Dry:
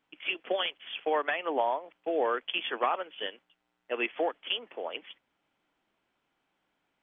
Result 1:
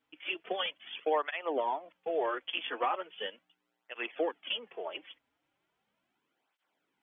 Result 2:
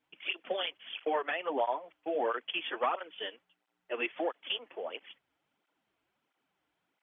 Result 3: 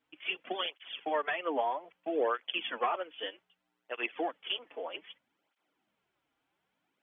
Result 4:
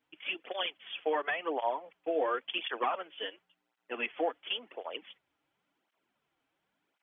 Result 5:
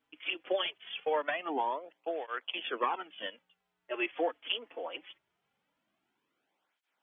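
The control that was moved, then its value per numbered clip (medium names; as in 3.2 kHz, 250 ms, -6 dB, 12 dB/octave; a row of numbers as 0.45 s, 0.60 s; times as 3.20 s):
cancelling through-zero flanger, nulls at: 0.38 Hz, 1.5 Hz, 0.63 Hz, 0.93 Hz, 0.22 Hz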